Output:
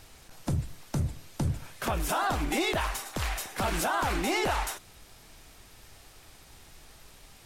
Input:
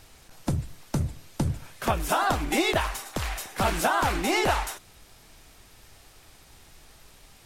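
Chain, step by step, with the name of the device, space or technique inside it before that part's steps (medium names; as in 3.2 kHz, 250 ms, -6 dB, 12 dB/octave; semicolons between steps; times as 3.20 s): soft clipper into limiter (saturation -12.5 dBFS, distortion -25 dB; peak limiter -20 dBFS, peak gain reduction 6 dB)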